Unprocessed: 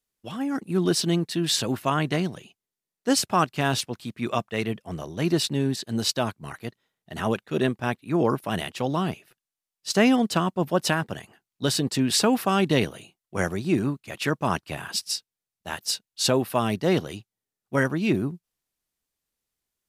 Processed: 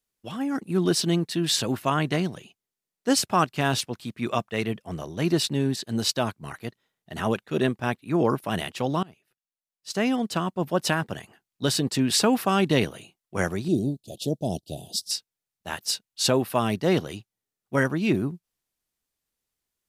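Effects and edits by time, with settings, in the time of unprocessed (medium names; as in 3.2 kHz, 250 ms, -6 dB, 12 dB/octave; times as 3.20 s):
9.03–11.07 s: fade in, from -24 dB
13.68–15.11 s: elliptic band-stop 680–3500 Hz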